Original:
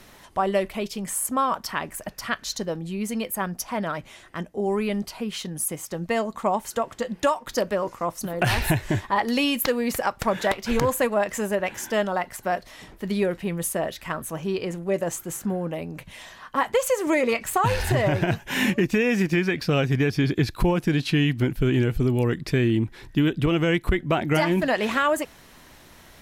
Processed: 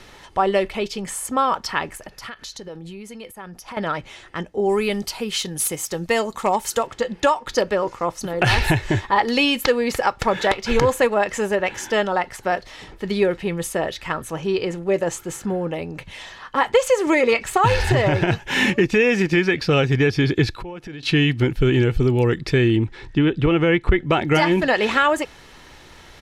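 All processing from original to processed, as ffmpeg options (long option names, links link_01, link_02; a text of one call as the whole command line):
ffmpeg -i in.wav -filter_complex "[0:a]asettb=1/sr,asplit=3[link_01][link_02][link_03];[link_01]atrim=end=1.974[link_04];[link_02]atrim=start=1.97:end=3.77,asetpts=PTS-STARTPTS,afade=type=in:duration=0.004:curve=qsin,afade=type=out:start_time=1.796:duration=0.004:curve=qsin,equalizer=frequency=11000:width=3.9:gain=8,acompressor=threshold=-35dB:ratio=20:attack=3.2:release=140:knee=1:detection=peak[link_05];[link_03]atrim=start=3.766[link_06];[link_04][link_05]acrossfade=duration=0.004:curve1=hsin:curve2=qsin[link_07];[link_07][link_06]acrossfade=duration=0.004:curve1=qsin:curve2=hsin,asettb=1/sr,asplit=3[link_08][link_09][link_10];[link_08]atrim=end=4.694[link_11];[link_09]atrim=start=4.69:end=6.87,asetpts=PTS-STARTPTS,afade=type=in:duration=0.004:curve=qsin,afade=type=out:start_time=2.176:duration=0.004:curve=qsin,aemphasis=mode=production:type=50fm,asoftclip=type=hard:threshold=-15.5dB[link_12];[link_10]atrim=start=6.866[link_13];[link_11][link_12]acrossfade=duration=0.004:curve1=hsin:curve2=qsin[link_14];[link_14][link_13]acrossfade=duration=0.004:curve1=qsin:curve2=hsin,asettb=1/sr,asplit=3[link_15][link_16][link_17];[link_15]atrim=end=20.564[link_18];[link_16]atrim=start=20.56:end=21.03,asetpts=PTS-STARTPTS,afade=type=in:duration=0.004:curve=qsin,afade=type=out:start_time=0.466:duration=0.004:curve=qsin,bass=frequency=250:gain=-3,treble=frequency=4000:gain=-6,acompressor=threshold=-35dB:ratio=8:attack=3.2:release=140:knee=1:detection=peak[link_19];[link_17]atrim=start=21.026[link_20];[link_18][link_19]acrossfade=duration=0.004:curve1=hsin:curve2=qsin[link_21];[link_21][link_20]acrossfade=duration=0.004:curve1=qsin:curve2=hsin,asettb=1/sr,asplit=3[link_22][link_23][link_24];[link_22]atrim=end=22.764[link_25];[link_23]atrim=start=22.76:end=24.04,asetpts=PTS-STARTPTS,afade=type=in:duration=0.004:curve=qsin,afade=type=out:start_time=1.276:duration=0.004:curve=qsin,acrossover=split=3100[link_26][link_27];[link_27]acompressor=threshold=-53dB:ratio=4:attack=1:release=60[link_28];[link_26][link_28]amix=inputs=2:normalize=0,lowpass=frequency=10000:width=0.5412,lowpass=frequency=10000:width=1.3066[link_29];[link_24]atrim=start=24.036[link_30];[link_25][link_29]acrossfade=duration=0.004:curve1=hsin:curve2=qsin[link_31];[link_31][link_30]acrossfade=duration=0.004:curve1=qsin:curve2=hsin,lowpass=4200,aemphasis=mode=production:type=50kf,aecho=1:1:2.3:0.32,volume=4dB" out.wav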